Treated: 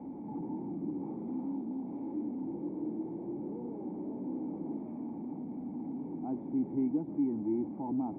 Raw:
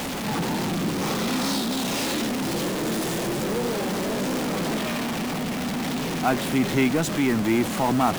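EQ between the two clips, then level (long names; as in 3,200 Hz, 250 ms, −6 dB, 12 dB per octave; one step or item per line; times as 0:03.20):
formant resonators in series u
high-pass filter 59 Hz
−4.5 dB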